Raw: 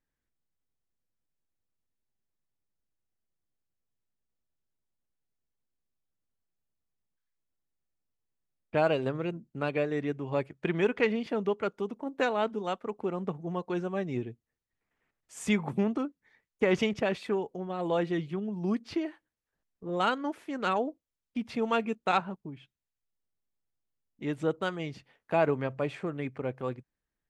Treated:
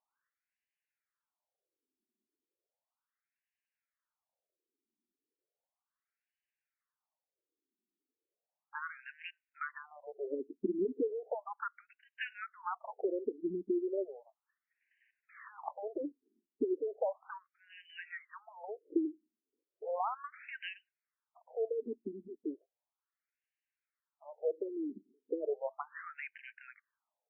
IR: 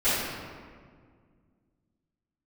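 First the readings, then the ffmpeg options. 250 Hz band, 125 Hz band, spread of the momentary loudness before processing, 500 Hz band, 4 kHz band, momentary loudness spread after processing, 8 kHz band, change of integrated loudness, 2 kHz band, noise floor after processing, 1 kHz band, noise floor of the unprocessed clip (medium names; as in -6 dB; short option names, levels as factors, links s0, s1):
-9.0 dB, under -25 dB, 11 LU, -7.5 dB, -14.5 dB, 17 LU, under -25 dB, -8.0 dB, -9.5 dB, under -85 dBFS, -10.0 dB, under -85 dBFS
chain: -af "acompressor=threshold=0.0158:ratio=6,afftfilt=real='re*between(b*sr/1024,290*pow(2200/290,0.5+0.5*sin(2*PI*0.35*pts/sr))/1.41,290*pow(2200/290,0.5+0.5*sin(2*PI*0.35*pts/sr))*1.41)':imag='im*between(b*sr/1024,290*pow(2200/290,0.5+0.5*sin(2*PI*0.35*pts/sr))/1.41,290*pow(2200/290,0.5+0.5*sin(2*PI*0.35*pts/sr))*1.41)':win_size=1024:overlap=0.75,volume=2.51"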